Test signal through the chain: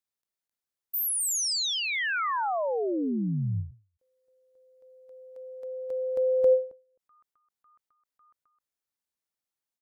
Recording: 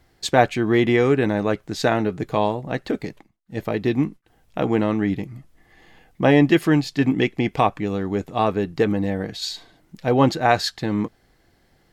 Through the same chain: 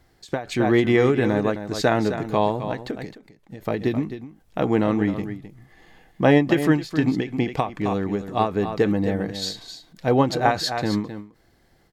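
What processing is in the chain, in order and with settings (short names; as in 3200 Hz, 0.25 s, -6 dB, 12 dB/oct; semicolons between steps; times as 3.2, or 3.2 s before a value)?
bell 2700 Hz -2.5 dB 0.59 oct; echo 0.262 s -10.5 dB; ending taper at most 160 dB/s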